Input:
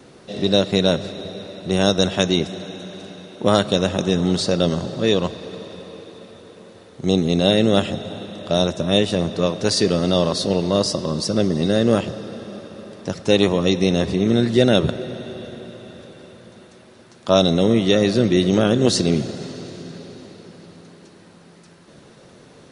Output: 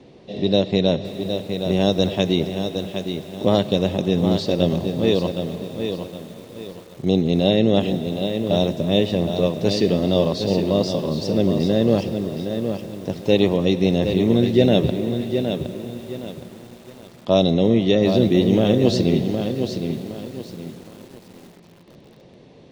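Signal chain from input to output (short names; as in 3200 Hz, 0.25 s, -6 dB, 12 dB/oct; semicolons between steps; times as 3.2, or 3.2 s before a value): LPF 3500 Hz 12 dB/oct; bell 1400 Hz -14.5 dB 0.68 oct; lo-fi delay 0.766 s, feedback 35%, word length 7-bit, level -7 dB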